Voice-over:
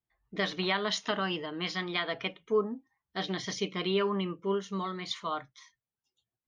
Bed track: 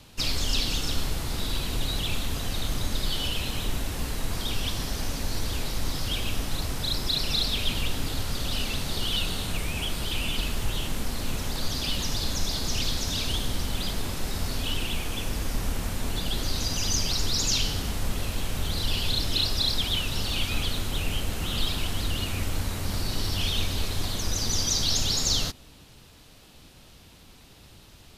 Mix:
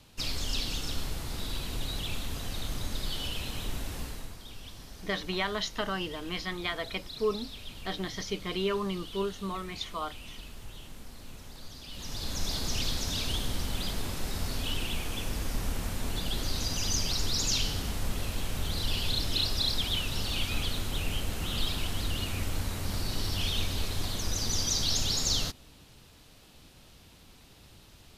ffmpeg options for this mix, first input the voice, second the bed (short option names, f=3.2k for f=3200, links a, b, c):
-filter_complex "[0:a]adelay=4700,volume=-1.5dB[a];[1:a]volume=7dB,afade=t=out:st=3.96:d=0.41:silence=0.298538,afade=t=in:st=11.89:d=0.62:silence=0.223872[b];[a][b]amix=inputs=2:normalize=0"